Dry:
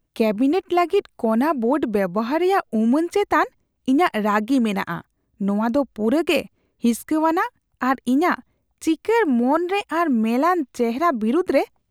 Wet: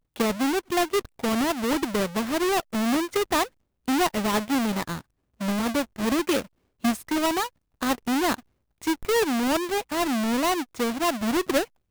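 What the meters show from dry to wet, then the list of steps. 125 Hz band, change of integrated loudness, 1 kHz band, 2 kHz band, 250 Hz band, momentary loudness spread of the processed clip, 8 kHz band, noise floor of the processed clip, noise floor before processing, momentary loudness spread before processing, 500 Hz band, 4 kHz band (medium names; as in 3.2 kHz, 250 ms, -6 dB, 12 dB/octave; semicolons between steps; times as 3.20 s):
-4.0 dB, -4.5 dB, -5.5 dB, -3.0 dB, -5.5 dB, 5 LU, +7.5 dB, -75 dBFS, -72 dBFS, 6 LU, -5.5 dB, +4.0 dB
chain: square wave that keeps the level; trim -9 dB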